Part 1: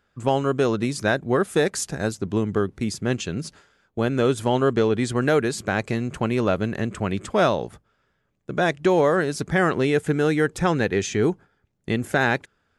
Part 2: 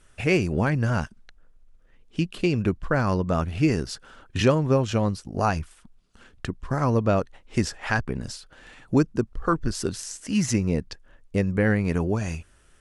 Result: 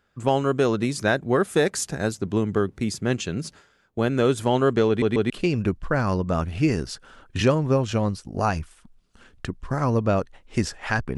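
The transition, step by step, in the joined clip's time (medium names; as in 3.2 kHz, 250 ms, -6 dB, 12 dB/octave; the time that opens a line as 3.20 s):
part 1
4.88 s: stutter in place 0.14 s, 3 plays
5.30 s: go over to part 2 from 2.30 s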